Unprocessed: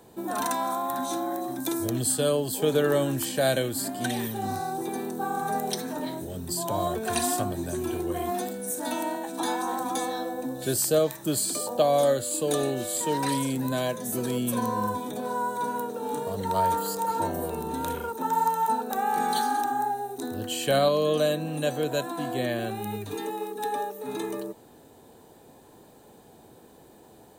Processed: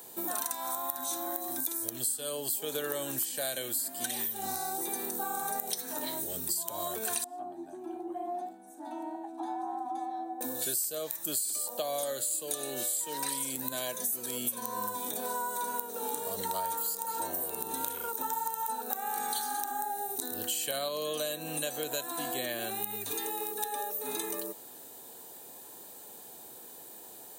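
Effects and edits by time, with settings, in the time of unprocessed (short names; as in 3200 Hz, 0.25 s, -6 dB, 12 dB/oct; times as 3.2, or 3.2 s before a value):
7.24–10.41 double band-pass 490 Hz, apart 1.2 oct
whole clip: RIAA curve recording; compressor 6:1, threshold -31 dBFS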